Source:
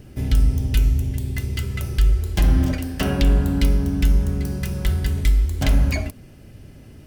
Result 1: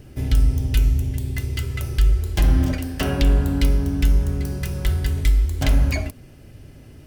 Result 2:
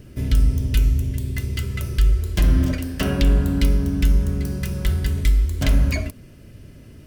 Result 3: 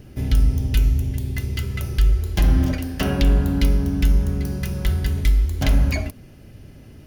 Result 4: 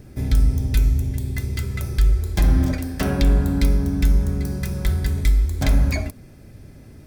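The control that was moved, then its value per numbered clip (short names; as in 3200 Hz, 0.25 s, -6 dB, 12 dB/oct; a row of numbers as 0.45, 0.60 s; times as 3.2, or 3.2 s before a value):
notch, frequency: 200, 800, 8000, 2900 Hz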